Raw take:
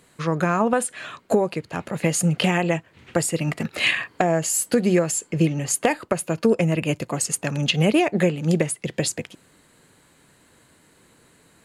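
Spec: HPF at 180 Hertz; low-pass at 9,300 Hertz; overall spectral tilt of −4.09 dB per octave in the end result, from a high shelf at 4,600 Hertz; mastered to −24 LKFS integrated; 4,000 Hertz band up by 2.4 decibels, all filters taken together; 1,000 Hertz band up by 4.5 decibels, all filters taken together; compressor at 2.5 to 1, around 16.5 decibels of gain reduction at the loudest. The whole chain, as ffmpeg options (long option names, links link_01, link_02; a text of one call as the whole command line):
ffmpeg -i in.wav -af "highpass=180,lowpass=9300,equalizer=frequency=1000:width_type=o:gain=6.5,equalizer=frequency=4000:width_type=o:gain=7.5,highshelf=frequency=4600:gain=-9,acompressor=threshold=-40dB:ratio=2.5,volume=13dB" out.wav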